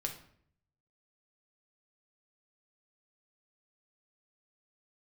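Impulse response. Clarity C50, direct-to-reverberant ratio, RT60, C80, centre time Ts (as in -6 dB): 9.0 dB, 2.5 dB, 0.60 s, 13.5 dB, 17 ms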